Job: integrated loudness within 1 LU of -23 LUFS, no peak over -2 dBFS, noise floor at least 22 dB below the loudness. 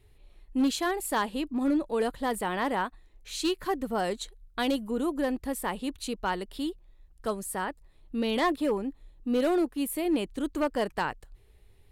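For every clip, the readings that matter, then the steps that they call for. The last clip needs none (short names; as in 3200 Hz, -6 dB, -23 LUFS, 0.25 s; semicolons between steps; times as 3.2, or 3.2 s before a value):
clipped 0.8%; flat tops at -20.0 dBFS; loudness -30.5 LUFS; peak -20.0 dBFS; loudness target -23.0 LUFS
-> clip repair -20 dBFS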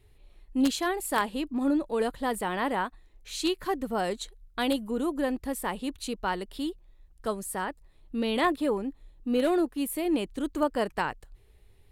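clipped 0.0%; loudness -30.0 LUFS; peak -11.0 dBFS; loudness target -23.0 LUFS
-> gain +7 dB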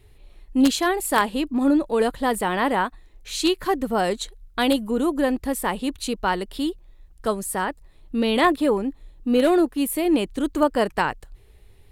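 loudness -23.0 LUFS; peak -4.0 dBFS; noise floor -52 dBFS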